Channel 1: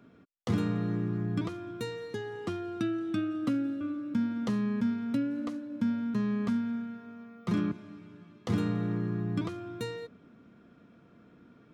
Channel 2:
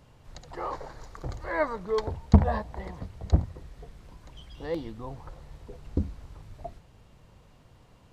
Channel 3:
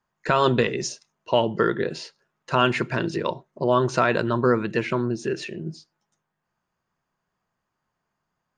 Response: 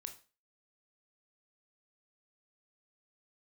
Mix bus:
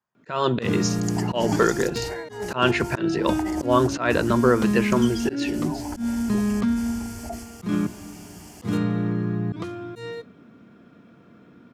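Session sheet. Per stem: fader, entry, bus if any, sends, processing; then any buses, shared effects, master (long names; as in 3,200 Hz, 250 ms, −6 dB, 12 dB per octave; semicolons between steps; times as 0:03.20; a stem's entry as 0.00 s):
−4.5 dB, 0.15 s, send −10.5 dB, no processing
−1.0 dB, 0.65 s, no send, high shelf with overshoot 3,000 Hz +13 dB, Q 1.5; compressor whose output falls as the input rises −40 dBFS, ratio −1; phaser with its sweep stopped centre 780 Hz, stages 8
−7.5 dB, 0.00 s, no send, no processing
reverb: on, RT60 0.35 s, pre-delay 17 ms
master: high-pass filter 80 Hz 12 dB per octave; automatic gain control gain up to 10 dB; volume swells 129 ms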